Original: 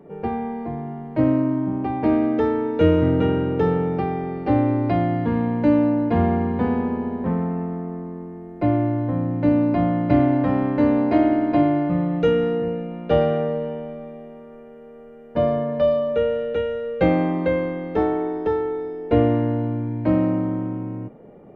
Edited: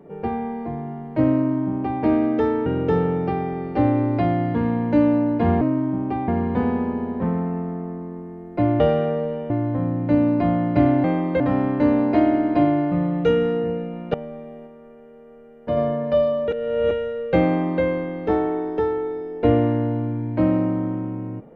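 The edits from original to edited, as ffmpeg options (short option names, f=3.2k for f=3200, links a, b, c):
-filter_complex "[0:a]asplit=13[a][b][c][d][e][f][g][h][i][j][k][l][m];[a]atrim=end=2.662[n];[b]atrim=start=3.368:end=6.322[o];[c]atrim=start=1.348:end=2.022[p];[d]atrim=start=6.318:end=8.842[q];[e]atrim=start=13.118:end=13.822[r];[f]atrim=start=8.838:end=10.382[s];[g]atrim=start=17.148:end=17.512[t];[h]atrim=start=10.378:end=13.122[u];[i]atrim=start=13.818:end=14.352[v];[j]atrim=start=14.348:end=15.452,asetpts=PTS-STARTPTS,volume=-3dB[w];[k]atrim=start=15.448:end=16.162[x];[l]atrim=start=16.158:end=16.592,asetpts=PTS-STARTPTS,areverse[y];[m]atrim=start=16.588[z];[n][o]acrossfade=d=0.004:c1=hsin:c2=hsin[aa];[aa][p]acrossfade=d=0.004:c1=hsin:c2=hsin[ab];[ab][q]acrossfade=d=0.004:c1=hsin:c2=hsin[ac];[ac][r]acrossfade=d=0.004:c1=hsin:c2=hsin[ad];[ad][s]acrossfade=d=0.004:c1=hsin:c2=hsin[ae];[ae][t]acrossfade=d=0.004:c1=hsin:c2=hsin[af];[af][u]acrossfade=d=0.004:c1=hsin:c2=hsin[ag];[ag][v]acrossfade=d=0.004:c1=hsin:c2=hsin[ah];[ah][w]acrossfade=d=0.004:c1=hsin:c2=hsin[ai];[ai][x]acrossfade=d=0.004:c1=hsin:c2=hsin[aj];[aj][y]acrossfade=d=0.004:c1=hsin:c2=hsin[ak];[ak][z]acrossfade=d=0.004:c1=hsin:c2=hsin"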